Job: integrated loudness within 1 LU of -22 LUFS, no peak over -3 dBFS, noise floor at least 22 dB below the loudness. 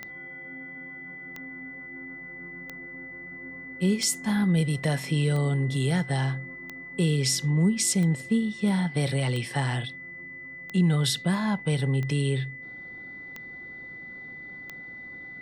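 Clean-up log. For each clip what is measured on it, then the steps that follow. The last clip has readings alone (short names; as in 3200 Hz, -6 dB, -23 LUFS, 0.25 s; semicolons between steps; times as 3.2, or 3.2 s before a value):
clicks 12; steady tone 2000 Hz; tone level -39 dBFS; loudness -26.0 LUFS; peak -13.5 dBFS; loudness target -22.0 LUFS
-> de-click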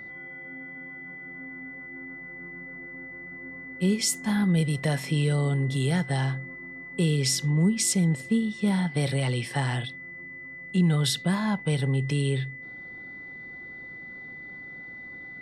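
clicks 0; steady tone 2000 Hz; tone level -39 dBFS
-> notch 2000 Hz, Q 30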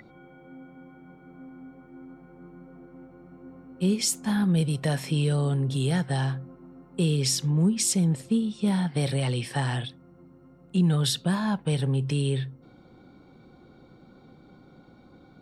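steady tone none; loudness -26.0 LUFS; peak -13.5 dBFS; loudness target -22.0 LUFS
-> gain +4 dB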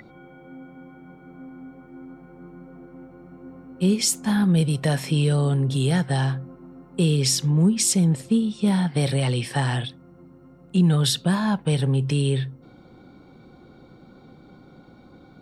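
loudness -22.0 LUFS; peak -9.5 dBFS; noise floor -50 dBFS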